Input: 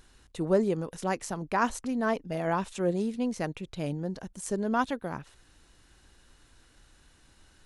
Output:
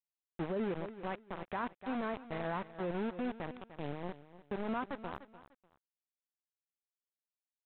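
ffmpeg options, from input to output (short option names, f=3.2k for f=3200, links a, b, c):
-af "aresample=8000,aeval=exprs='val(0)*gte(abs(val(0)),0.0335)':c=same,aresample=44100,lowpass=2.5k,aecho=1:1:297|594:0.158|0.0396,alimiter=limit=-22.5dB:level=0:latency=1:release=15,volume=-5.5dB"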